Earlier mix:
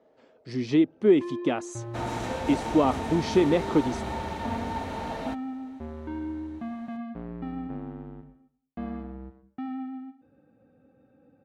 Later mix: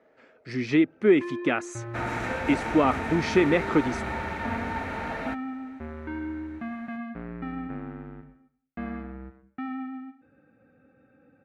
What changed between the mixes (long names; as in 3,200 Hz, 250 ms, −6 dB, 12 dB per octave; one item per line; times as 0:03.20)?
second sound: add parametric band 8,000 Hz −4.5 dB 2.9 octaves
master: add flat-topped bell 1,800 Hz +9.5 dB 1.2 octaves